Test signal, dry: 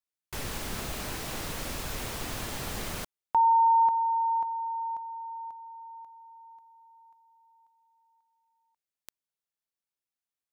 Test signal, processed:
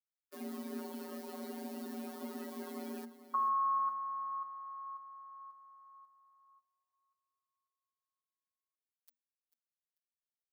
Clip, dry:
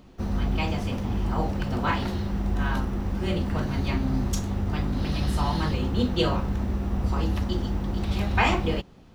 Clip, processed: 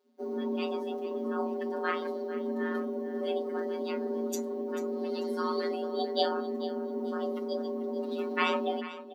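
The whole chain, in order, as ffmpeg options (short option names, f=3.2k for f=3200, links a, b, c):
-af "afftdn=nr=18:nf=-34,afftfilt=real='hypot(re,im)*cos(PI*b)':imag='0':win_size=1024:overlap=0.75,afreqshift=230,aexciter=amount=2.3:drive=3.2:freq=4k,aecho=1:1:442|884|1326:0.188|0.0509|0.0137,volume=-2.5dB"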